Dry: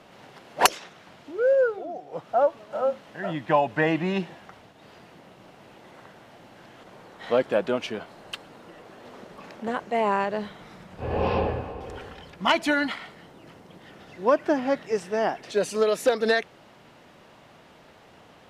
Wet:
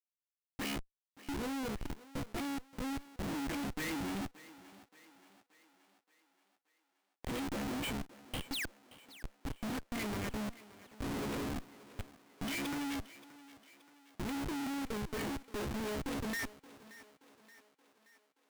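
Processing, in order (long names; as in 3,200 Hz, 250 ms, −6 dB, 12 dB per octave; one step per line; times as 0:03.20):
sub-octave generator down 1 octave, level −2 dB
reverb reduction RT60 1.7 s
dynamic equaliser 1,500 Hz, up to +4 dB, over −39 dBFS, Q 1.6
tuned comb filter 70 Hz, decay 0.27 s, harmonics all, mix 100%
rotating-speaker cabinet horn 0.75 Hz, later 7.5 Hz, at 0:07.10
sound drawn into the spectrogram fall, 0:08.50–0:08.74, 590–6,600 Hz −38 dBFS
in parallel at −10 dB: wrap-around overflow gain 20 dB
on the sum: formant filter i
comparator with hysteresis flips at −56 dBFS
on a send: feedback echo with a high-pass in the loop 576 ms, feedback 55%, high-pass 250 Hz, level −17 dB
on the sum: level +12 dB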